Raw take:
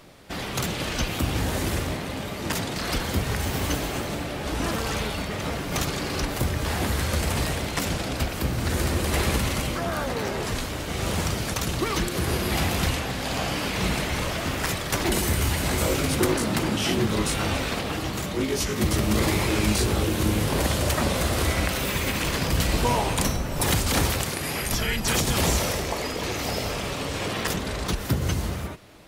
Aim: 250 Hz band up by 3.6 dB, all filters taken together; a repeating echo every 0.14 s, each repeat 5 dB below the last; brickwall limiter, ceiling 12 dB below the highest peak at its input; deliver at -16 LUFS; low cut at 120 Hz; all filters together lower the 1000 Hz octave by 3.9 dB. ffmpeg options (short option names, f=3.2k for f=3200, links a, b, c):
-af "highpass=120,equalizer=f=250:t=o:g=5.5,equalizer=f=1k:t=o:g=-5.5,alimiter=limit=-20.5dB:level=0:latency=1,aecho=1:1:140|280|420|560|700|840|980:0.562|0.315|0.176|0.0988|0.0553|0.031|0.0173,volume=12dB"